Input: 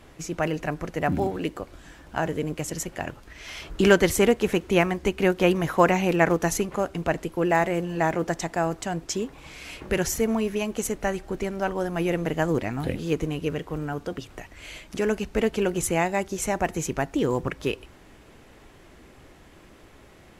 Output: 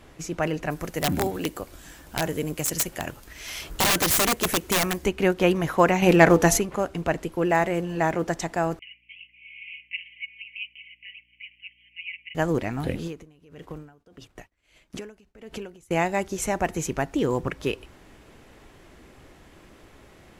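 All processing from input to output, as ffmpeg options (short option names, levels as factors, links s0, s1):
-filter_complex "[0:a]asettb=1/sr,asplit=3[s0][s1][s2];[s0]atrim=end=0.704[s3];[s1]atrim=start=0.7:end=5.06,asetpts=PTS-STARTPTS,afade=t=in:d=0.004:c=qsin,afade=t=out:st=4.356:d=0.004:c=qsin,aemphasis=mode=production:type=50fm,aeval=exprs='(mod(5.62*val(0)+1,2)-1)/5.62':c=same[s4];[s2]atrim=start=5.056[s5];[s3][s4]acrossfade=d=0.004:c1=hsin:c2=qsin[s6];[s6][s5]acrossfade=d=0.004:c1=qsin:c2=hsin,asettb=1/sr,asplit=3[s7][s8][s9];[s7]atrim=end=6.024[s10];[s8]atrim=start=6.02:end=6.59,asetpts=PTS-STARTPTS,afade=t=in:d=0.004:c=qsin,afade=t=out:st=0.566:d=0.004:c=qsin,bandreject=f=97.61:t=h:w=4,bandreject=f=195.22:t=h:w=4,bandreject=f=292.83:t=h:w=4,bandreject=f=390.44:t=h:w=4,bandreject=f=488.05:t=h:w=4,bandreject=f=585.66:t=h:w=4,bandreject=f=683.27:t=h:w=4,bandreject=f=780.88:t=h:w=4,bandreject=f=878.49:t=h:w=4,acontrast=67[s11];[s9]atrim=start=6.586[s12];[s10][s11]acrossfade=d=0.004:c1=hsin:c2=qsin[s13];[s13][s12]acrossfade=d=0.004:c1=qsin:c2=hsin,asettb=1/sr,asplit=3[s14][s15][s16];[s14]atrim=end=8.794[s17];[s15]atrim=start=8.79:end=12.35,asetpts=PTS-STARTPTS,afade=t=in:d=0.004:c=qsin,afade=t=out:st=3.556:d=0.004:c=qsin,asuperpass=centerf=2500:order=12:qfactor=2.6,aecho=1:1:4.5:0.96,atrim=end_sample=156996,aeval=exprs='val(0)+0.000251*(sin(2*PI*60*n/s)+sin(2*PI*2*60*n/s)/2+sin(2*PI*3*60*n/s)/3+sin(2*PI*4*60*n/s)/4+sin(2*PI*5*60*n/s)/5)':c=same[s18];[s16]atrim=start=12.346[s19];[s17][s18]acrossfade=d=0.004:c1=hsin:c2=qsin[s20];[s20][s19]acrossfade=d=0.004:c1=qsin:c2=hsin,asettb=1/sr,asplit=3[s21][s22][s23];[s21]atrim=end=13.074[s24];[s22]atrim=start=13.07:end=15.91,asetpts=PTS-STARTPTS,afade=t=in:d=0.004:c=qsin,afade=t=out:st=2.836:d=0.004:c=qsin,agate=range=0.0224:threshold=0.0126:ratio=3:release=100:detection=peak,acompressor=threshold=0.0316:ratio=8:attack=3.2:release=140:knee=1:detection=peak,aeval=exprs='val(0)*pow(10,-22*(0.5-0.5*cos(2*PI*1.6*n/s))/20)':c=same[s25];[s23]atrim=start=15.906[s26];[s24][s25]acrossfade=d=0.004:c1=hsin:c2=qsin[s27];[s27][s26]acrossfade=d=0.004:c1=qsin:c2=hsin"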